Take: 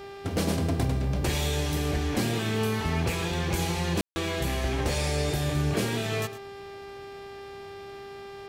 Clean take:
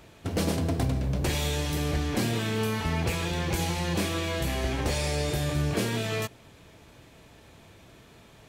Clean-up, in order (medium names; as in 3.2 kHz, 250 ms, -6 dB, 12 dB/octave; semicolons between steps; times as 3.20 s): de-hum 397 Hz, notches 14; room tone fill 4.01–4.16 s; inverse comb 109 ms -14 dB